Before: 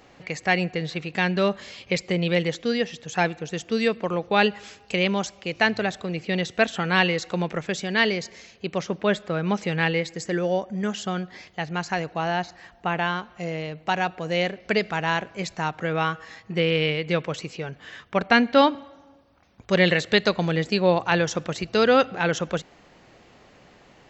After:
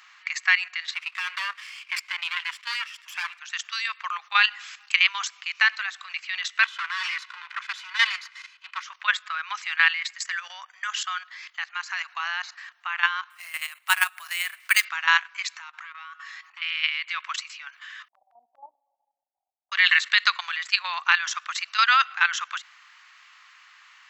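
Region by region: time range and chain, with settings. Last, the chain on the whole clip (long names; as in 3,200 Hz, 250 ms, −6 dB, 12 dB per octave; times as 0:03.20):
0:00.94–0:03.39: lower of the sound and its delayed copy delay 0.39 ms + high-shelf EQ 6,500 Hz −8.5 dB
0:06.63–0:08.83: lower of the sound and its delayed copy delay 2 ms + low-pass filter 4,600 Hz
0:11.64–0:12.06: high-pass filter 350 Hz + one half of a high-frequency compander decoder only
0:13.30–0:14.85: high-shelf EQ 6,100 Hz +6.5 dB + bad sample-rate conversion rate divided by 4×, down none, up hold
0:15.57–0:16.62: low shelf with overshoot 180 Hz −14 dB, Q 3 + downward compressor 3 to 1, threshold −40 dBFS + saturating transformer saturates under 650 Hz
0:18.08–0:19.72: Butterworth low-pass 790 Hz 96 dB per octave + low-shelf EQ 250 Hz +4 dB + volume swells 115 ms
whole clip: elliptic high-pass filter 1,100 Hz, stop band 60 dB; parametric band 1,700 Hz +4 dB 1.8 octaves; output level in coarse steps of 12 dB; level +7 dB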